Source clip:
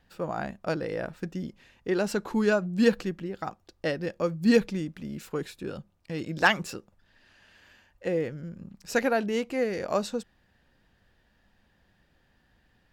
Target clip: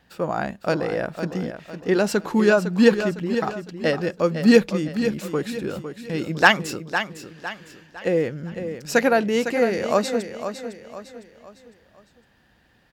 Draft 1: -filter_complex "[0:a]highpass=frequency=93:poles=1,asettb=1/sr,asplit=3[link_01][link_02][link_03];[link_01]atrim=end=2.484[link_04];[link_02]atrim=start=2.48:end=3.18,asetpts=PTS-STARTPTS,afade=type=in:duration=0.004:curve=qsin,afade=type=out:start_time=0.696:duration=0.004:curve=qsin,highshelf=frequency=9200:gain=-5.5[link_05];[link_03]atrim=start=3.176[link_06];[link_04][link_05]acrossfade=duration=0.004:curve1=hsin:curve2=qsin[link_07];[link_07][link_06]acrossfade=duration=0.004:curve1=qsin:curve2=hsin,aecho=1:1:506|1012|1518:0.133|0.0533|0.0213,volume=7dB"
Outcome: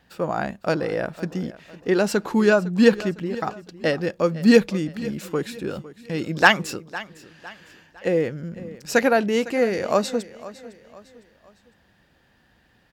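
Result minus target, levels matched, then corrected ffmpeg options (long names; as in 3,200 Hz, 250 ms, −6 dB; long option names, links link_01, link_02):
echo-to-direct −8 dB
-filter_complex "[0:a]highpass=frequency=93:poles=1,asettb=1/sr,asplit=3[link_01][link_02][link_03];[link_01]atrim=end=2.484[link_04];[link_02]atrim=start=2.48:end=3.18,asetpts=PTS-STARTPTS,afade=type=in:duration=0.004:curve=qsin,afade=type=out:start_time=0.696:duration=0.004:curve=qsin,highshelf=frequency=9200:gain=-5.5[link_05];[link_03]atrim=start=3.176[link_06];[link_04][link_05]acrossfade=duration=0.004:curve1=hsin:curve2=qsin[link_07];[link_07][link_06]acrossfade=duration=0.004:curve1=qsin:curve2=hsin,aecho=1:1:506|1012|1518|2024:0.335|0.134|0.0536|0.0214,volume=7dB"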